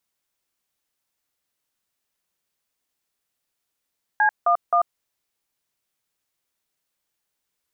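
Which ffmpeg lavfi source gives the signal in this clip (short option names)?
-f lavfi -i "aevalsrc='0.133*clip(min(mod(t,0.263),0.091-mod(t,0.263))/0.002,0,1)*(eq(floor(t/0.263),0)*(sin(2*PI*852*mod(t,0.263))+sin(2*PI*1633*mod(t,0.263)))+eq(floor(t/0.263),1)*(sin(2*PI*697*mod(t,0.263))+sin(2*PI*1209*mod(t,0.263)))+eq(floor(t/0.263),2)*(sin(2*PI*697*mod(t,0.263))+sin(2*PI*1209*mod(t,0.263))))':d=0.789:s=44100"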